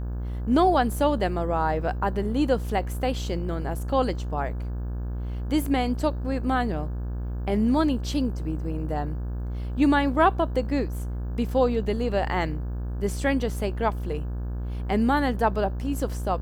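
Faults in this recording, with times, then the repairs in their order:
buzz 60 Hz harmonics 29 -30 dBFS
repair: de-hum 60 Hz, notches 29

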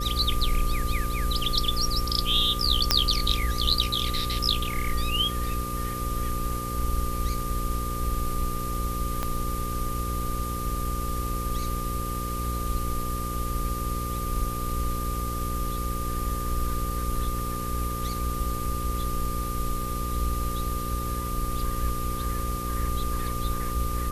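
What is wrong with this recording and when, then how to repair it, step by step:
buzz 60 Hz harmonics 9 -32 dBFS
tone 1200 Hz -33 dBFS
2.91 pop -3 dBFS
9.23 pop -14 dBFS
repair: de-click; notch 1200 Hz, Q 30; de-hum 60 Hz, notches 9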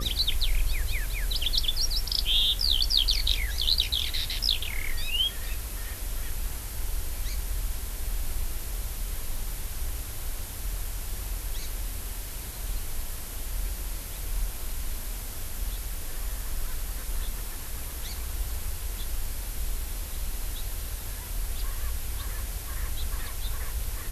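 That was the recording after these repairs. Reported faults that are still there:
9.23 pop

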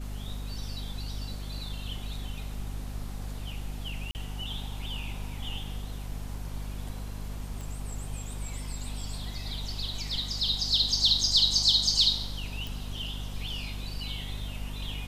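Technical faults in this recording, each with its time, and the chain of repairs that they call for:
hum 50 Hz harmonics 5 -37 dBFS
4.11–4.15 gap 39 ms
7.61 pop
12.67 pop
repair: de-click; de-hum 50 Hz, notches 5; interpolate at 4.11, 39 ms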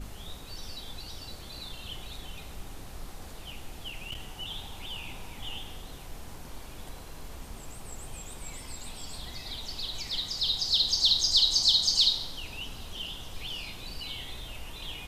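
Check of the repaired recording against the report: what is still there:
none

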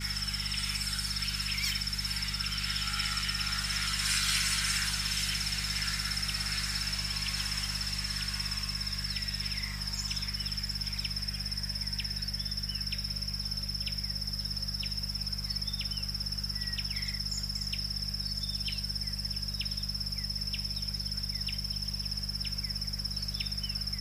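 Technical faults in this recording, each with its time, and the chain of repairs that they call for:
hum 50 Hz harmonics 4 -39 dBFS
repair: de-hum 50 Hz, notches 4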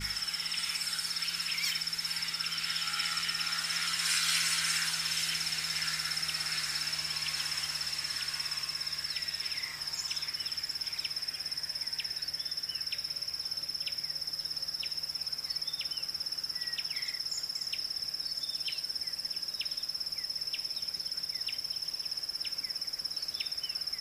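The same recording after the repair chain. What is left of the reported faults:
none

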